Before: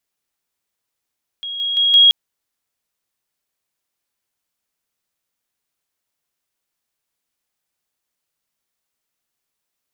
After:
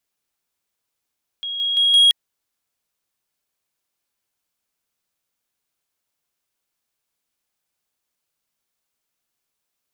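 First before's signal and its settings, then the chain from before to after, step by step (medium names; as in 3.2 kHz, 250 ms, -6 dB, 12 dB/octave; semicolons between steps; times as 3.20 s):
level ladder 3.29 kHz -24.5 dBFS, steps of 6 dB, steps 4, 0.17 s 0.00 s
band-stop 1.9 kHz, Q 22; saturation -9 dBFS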